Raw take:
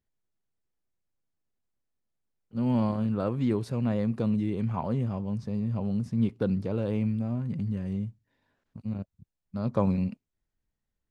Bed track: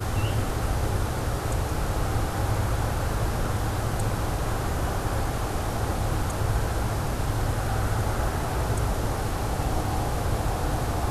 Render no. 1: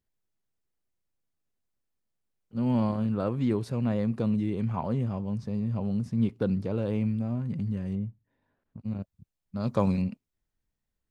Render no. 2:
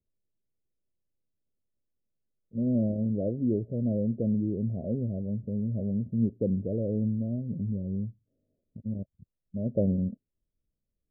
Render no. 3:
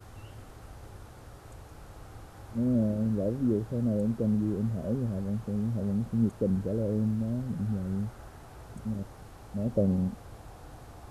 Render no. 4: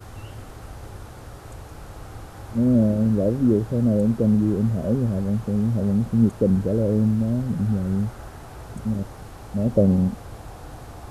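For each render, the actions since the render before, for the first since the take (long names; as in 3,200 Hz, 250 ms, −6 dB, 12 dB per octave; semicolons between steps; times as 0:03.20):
0:07.95–0:08.85: low-pass filter 1,300 Hz 6 dB per octave; 0:09.60–0:10.02: high-shelf EQ 2,800 Hz +10 dB
Butterworth low-pass 650 Hz 96 dB per octave; dynamic equaliser 140 Hz, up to −7 dB, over −49 dBFS, Q 5.9
mix in bed track −21 dB
level +8.5 dB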